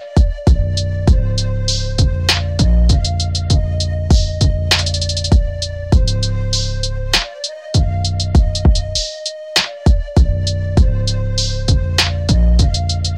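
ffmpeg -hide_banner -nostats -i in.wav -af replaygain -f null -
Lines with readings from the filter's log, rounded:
track_gain = -1.5 dB
track_peak = 0.521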